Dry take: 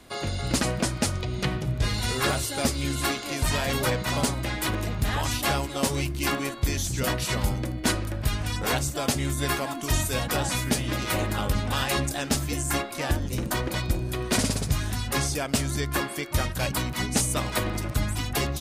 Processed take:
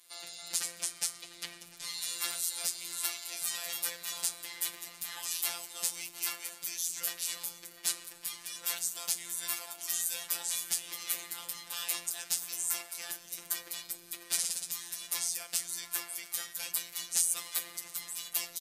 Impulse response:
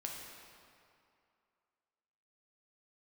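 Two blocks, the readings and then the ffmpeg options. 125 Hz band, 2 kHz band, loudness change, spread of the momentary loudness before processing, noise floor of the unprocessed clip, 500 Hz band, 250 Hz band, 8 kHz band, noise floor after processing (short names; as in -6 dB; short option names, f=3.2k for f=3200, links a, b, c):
-38.5 dB, -13.0 dB, -7.0 dB, 3 LU, -35 dBFS, -24.0 dB, -30.5 dB, -1.5 dB, -53 dBFS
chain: -filter_complex "[0:a]aderivative,asplit=2[a][b];[b]adelay=699.7,volume=-13dB,highshelf=f=4k:g=-15.7[c];[a][c]amix=inputs=2:normalize=0,asplit=2[d][e];[1:a]atrim=start_sample=2205,asetrate=31311,aresample=44100[f];[e][f]afir=irnorm=-1:irlink=0,volume=-13.5dB[g];[d][g]amix=inputs=2:normalize=0,afftfilt=real='hypot(re,im)*cos(PI*b)':imag='0':win_size=1024:overlap=0.75"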